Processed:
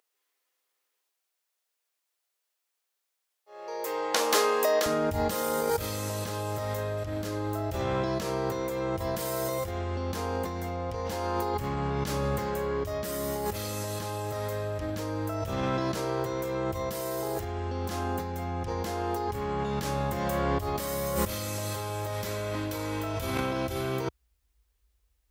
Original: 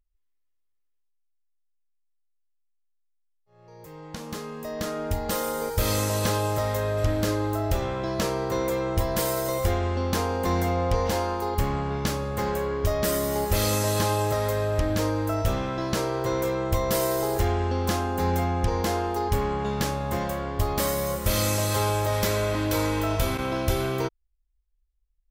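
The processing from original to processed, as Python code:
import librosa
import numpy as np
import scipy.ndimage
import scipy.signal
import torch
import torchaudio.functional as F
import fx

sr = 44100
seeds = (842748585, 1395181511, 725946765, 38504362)

y = fx.highpass(x, sr, hz=fx.steps((0.0, 400.0), (4.86, 60.0)), slope=24)
y = fx.over_compress(y, sr, threshold_db=-36.0, ratio=-1.0)
y = F.gain(torch.from_numpy(y), 5.0).numpy()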